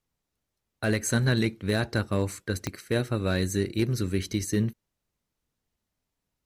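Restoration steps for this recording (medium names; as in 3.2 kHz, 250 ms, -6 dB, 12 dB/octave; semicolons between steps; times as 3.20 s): clip repair -14.5 dBFS; de-click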